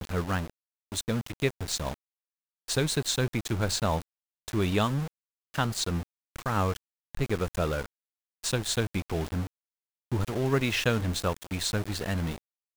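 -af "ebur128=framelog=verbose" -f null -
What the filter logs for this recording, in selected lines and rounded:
Integrated loudness:
  I:         -30.0 LUFS
  Threshold: -40.4 LUFS
Loudness range:
  LRA:         2.5 LU
  Threshold: -50.6 LUFS
  LRA low:   -32.0 LUFS
  LRA high:  -29.5 LUFS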